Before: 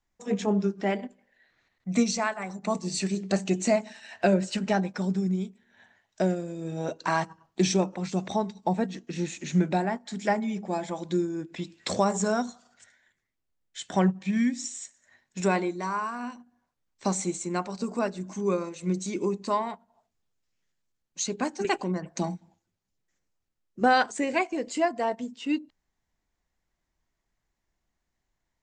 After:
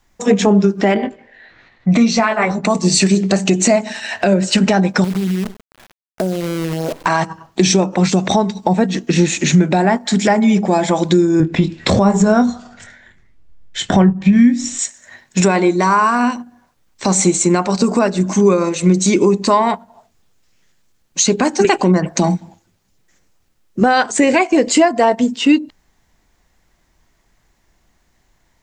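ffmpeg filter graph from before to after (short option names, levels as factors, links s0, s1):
-filter_complex "[0:a]asettb=1/sr,asplit=3[s0][s1][s2];[s0]atrim=end=0.944[s3];[s1]atrim=start=0.94:end=2.65,asetpts=PTS-STARTPTS,afade=t=in:d=0.004:c=qsin,afade=t=out:st=1.706:d=0.004:c=qsin,lowpass=3800,asplit=2[s4][s5];[s5]adelay=18,volume=0.631[s6];[s4][s6]amix=inputs=2:normalize=0,atrim=end_sample=75411[s7];[s2]atrim=start=2.646[s8];[s3][s7]acrossfade=d=0.004:c1=hsin:c2=qsin[s9];[s9][s8]acrossfade=d=0.004:c1=qsin:c2=hsin,asettb=1/sr,asplit=3[s10][s11][s12];[s10]atrim=end=5.044[s13];[s11]atrim=start=5.04:end=7.06,asetpts=PTS-STARTPTS,afade=t=in:d=0.004:c=qsin,afade=t=out:st=2.016:d=0.004:c=qsin,lowpass=1000,acrusher=bits=7:dc=4:mix=0:aa=0.000001,acompressor=threshold=0.0126:ratio=4:attack=3.2:release=140:knee=1:detection=peak[s14];[s12]atrim=start=7.056[s15];[s13][s14]acrossfade=d=0.004:c1=hsin:c2=qsin[s16];[s16][s15]acrossfade=d=0.004:c1=qsin:c2=hsin,asettb=1/sr,asplit=3[s17][s18][s19];[s17]atrim=end=11.404[s20];[s18]atrim=start=11.4:end=14.79,asetpts=PTS-STARTPTS,afade=t=in:d=0.004:c=qsin,afade=t=out:st=3.386:d=0.004:c=qsin,aemphasis=mode=reproduction:type=bsi,asplit=2[s21][s22];[s22]adelay=25,volume=0.316[s23];[s21][s23]amix=inputs=2:normalize=0,atrim=end_sample=149499[s24];[s19]atrim=start=14.786[s25];[s20][s24]acrossfade=d=0.004:c1=hsin:c2=qsin[s26];[s26][s25]acrossfade=d=0.004:c1=qsin:c2=hsin,acompressor=threshold=0.0398:ratio=6,alimiter=level_in=13.3:limit=0.891:release=50:level=0:latency=1,volume=0.794"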